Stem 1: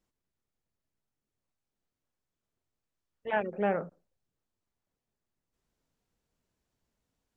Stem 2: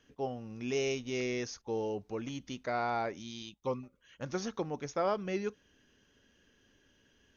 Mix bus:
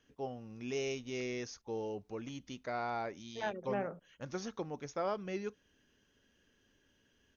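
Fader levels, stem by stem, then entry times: -8.0, -4.5 dB; 0.10, 0.00 s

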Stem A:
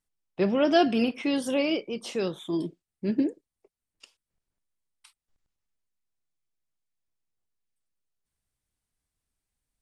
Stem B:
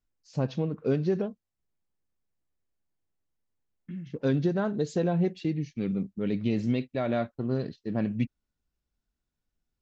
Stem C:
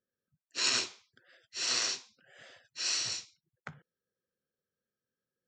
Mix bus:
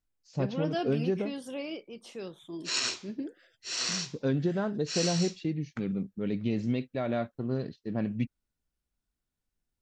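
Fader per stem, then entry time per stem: -11.5, -2.5, -1.0 dB; 0.00, 0.00, 2.10 s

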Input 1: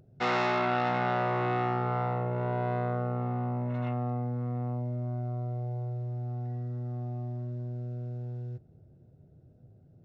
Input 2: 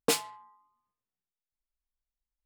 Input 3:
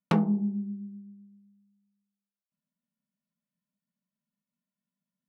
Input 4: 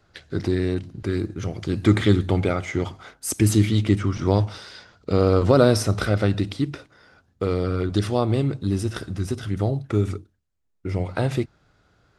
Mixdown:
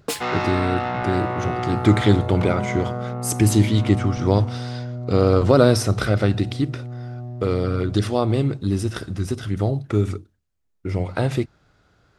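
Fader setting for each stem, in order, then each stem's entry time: +3.0, -0.5, -5.0, +1.5 dB; 0.00, 0.00, 2.30, 0.00 s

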